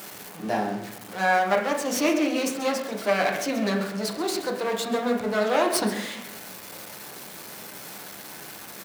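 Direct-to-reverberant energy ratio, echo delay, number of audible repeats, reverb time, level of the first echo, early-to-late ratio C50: 0.5 dB, 134 ms, 1, 0.70 s, −13.5 dB, 7.0 dB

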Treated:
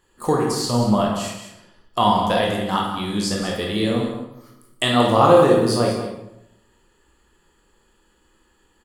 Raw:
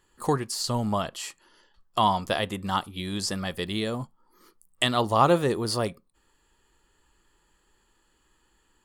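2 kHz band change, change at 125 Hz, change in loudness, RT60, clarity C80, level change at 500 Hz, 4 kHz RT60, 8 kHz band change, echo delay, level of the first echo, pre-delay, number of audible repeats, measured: +5.5 dB, +6.5 dB, +7.5 dB, 0.85 s, 5.0 dB, +9.5 dB, 0.65 s, +4.0 dB, 185 ms, −10.0 dB, 18 ms, 1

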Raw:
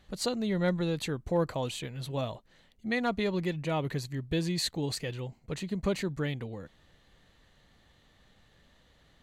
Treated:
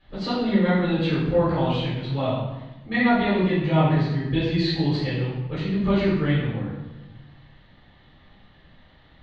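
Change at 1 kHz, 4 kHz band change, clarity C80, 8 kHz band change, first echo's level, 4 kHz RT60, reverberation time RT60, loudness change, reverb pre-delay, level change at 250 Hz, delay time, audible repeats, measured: +10.5 dB, +5.0 dB, 3.0 dB, below −15 dB, no echo audible, 0.75 s, 1.0 s, +9.5 dB, 7 ms, +10.5 dB, no echo audible, no echo audible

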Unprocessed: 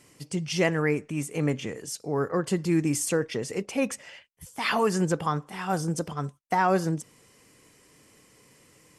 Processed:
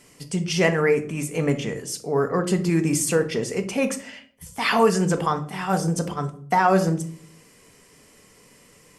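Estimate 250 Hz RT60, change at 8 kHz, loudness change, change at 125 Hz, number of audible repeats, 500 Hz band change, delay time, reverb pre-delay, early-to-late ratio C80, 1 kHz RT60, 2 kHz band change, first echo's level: 0.80 s, +4.5 dB, +5.0 dB, +4.5 dB, no echo audible, +5.5 dB, no echo audible, 4 ms, 17.5 dB, 0.45 s, +4.5 dB, no echo audible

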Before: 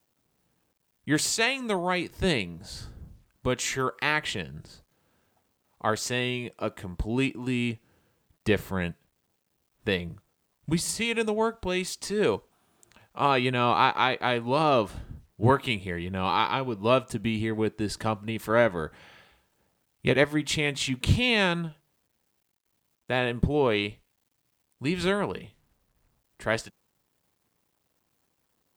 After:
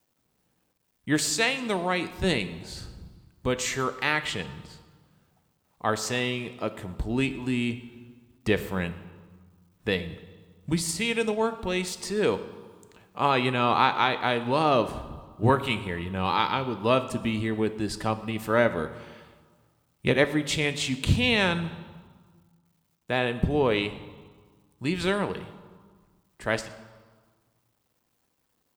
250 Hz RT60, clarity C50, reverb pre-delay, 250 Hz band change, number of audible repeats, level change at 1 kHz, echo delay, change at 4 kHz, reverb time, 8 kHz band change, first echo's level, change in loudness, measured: 1.8 s, 13.5 dB, 4 ms, +0.5 dB, 1, +0.5 dB, 119 ms, +0.5 dB, 1.6 s, 0.0 dB, −23.0 dB, +0.5 dB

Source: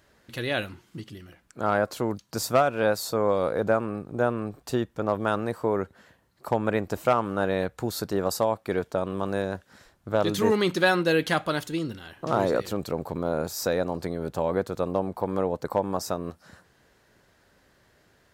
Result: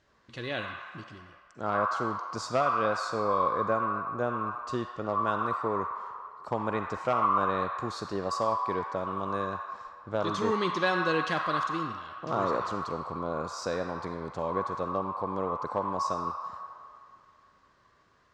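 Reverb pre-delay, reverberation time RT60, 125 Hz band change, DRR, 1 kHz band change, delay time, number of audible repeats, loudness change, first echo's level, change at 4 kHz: 40 ms, 2.3 s, −6.5 dB, −5.0 dB, +2.0 dB, no echo audible, no echo audible, −3.5 dB, no echo audible, −5.5 dB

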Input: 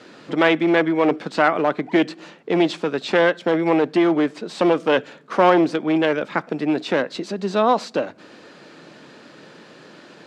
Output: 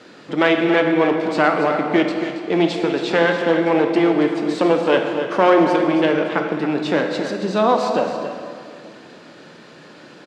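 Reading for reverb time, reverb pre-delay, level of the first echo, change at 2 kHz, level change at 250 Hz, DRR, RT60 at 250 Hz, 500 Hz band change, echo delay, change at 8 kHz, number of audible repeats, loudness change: 2.4 s, 14 ms, −10.0 dB, +1.5 dB, +2.0 dB, 2.5 dB, 2.6 s, +2.5 dB, 276 ms, can't be measured, 1, +2.0 dB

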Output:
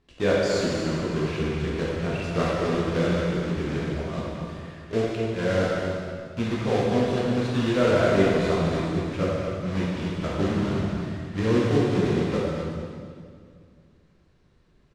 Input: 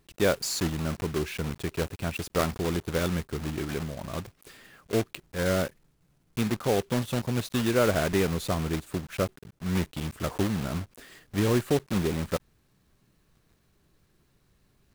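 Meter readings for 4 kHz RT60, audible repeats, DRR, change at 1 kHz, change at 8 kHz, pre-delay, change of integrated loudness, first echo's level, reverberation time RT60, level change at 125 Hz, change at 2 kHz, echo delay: 1.9 s, 1, −6.5 dB, +4.0 dB, −5.5 dB, 9 ms, +4.0 dB, −8.0 dB, 2.1 s, +4.0 dB, +3.5 dB, 242 ms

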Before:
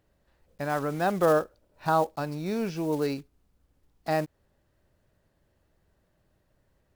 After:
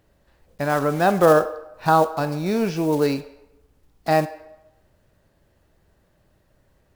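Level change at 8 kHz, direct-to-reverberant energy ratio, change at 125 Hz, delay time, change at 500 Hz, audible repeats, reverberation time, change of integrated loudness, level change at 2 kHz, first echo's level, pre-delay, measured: +8.0 dB, 10.5 dB, +7.5 dB, no echo audible, +7.5 dB, no echo audible, 0.90 s, +7.5 dB, +7.5 dB, no echo audible, 7 ms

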